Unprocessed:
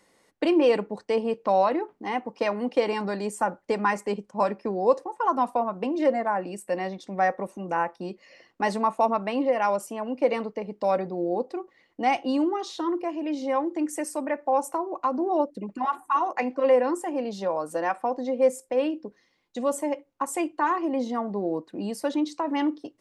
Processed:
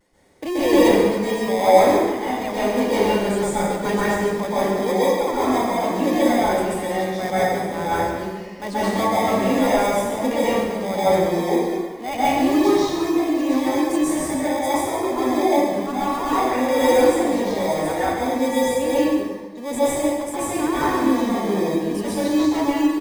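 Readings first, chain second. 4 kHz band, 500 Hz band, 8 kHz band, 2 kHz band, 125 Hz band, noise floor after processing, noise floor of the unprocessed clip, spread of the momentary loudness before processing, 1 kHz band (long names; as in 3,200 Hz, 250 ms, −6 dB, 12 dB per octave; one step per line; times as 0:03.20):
+11.0 dB, +6.0 dB, +10.5 dB, +7.0 dB, +10.5 dB, −31 dBFS, −66 dBFS, 8 LU, +4.5 dB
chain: pitch vibrato 0.51 Hz 24 cents
in parallel at −3 dB: decimation without filtering 31×
on the sum: transient designer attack −4 dB, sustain +6 dB
single-tap delay 141 ms −10 dB
dense smooth reverb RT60 1.3 s, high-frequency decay 0.65×, pre-delay 115 ms, DRR −9 dB
level −6.5 dB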